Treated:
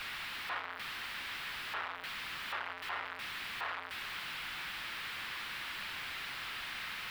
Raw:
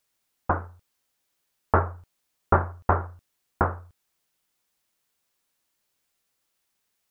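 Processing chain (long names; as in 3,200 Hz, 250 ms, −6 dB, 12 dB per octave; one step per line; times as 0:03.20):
sign of each sample alone
high-pass filter 1,400 Hz 12 dB per octave
soft clipping −29 dBFS, distortion −19 dB
high-frequency loss of the air 440 metres
level +7.5 dB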